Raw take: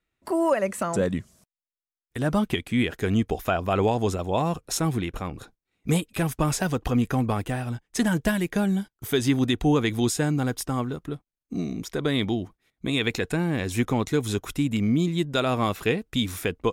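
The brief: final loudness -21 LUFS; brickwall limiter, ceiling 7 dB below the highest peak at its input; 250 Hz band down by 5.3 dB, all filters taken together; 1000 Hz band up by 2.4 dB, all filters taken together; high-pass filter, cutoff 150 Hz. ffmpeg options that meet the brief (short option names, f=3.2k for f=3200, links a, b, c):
-af "highpass=150,equalizer=f=250:t=o:g=-6,equalizer=f=1k:t=o:g=3.5,volume=8dB,alimiter=limit=-7.5dB:level=0:latency=1"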